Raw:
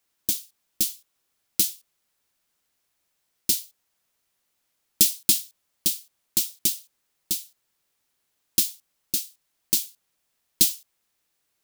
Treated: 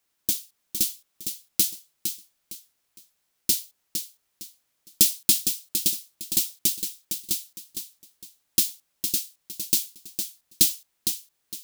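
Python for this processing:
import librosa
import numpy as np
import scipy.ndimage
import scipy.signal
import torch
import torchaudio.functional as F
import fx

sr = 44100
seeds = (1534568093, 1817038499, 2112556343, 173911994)

y = fx.echo_feedback(x, sr, ms=459, feedback_pct=28, wet_db=-7.5)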